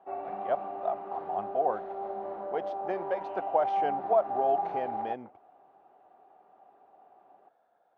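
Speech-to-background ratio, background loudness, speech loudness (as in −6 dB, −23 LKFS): 3.5 dB, −36.0 LKFS, −32.5 LKFS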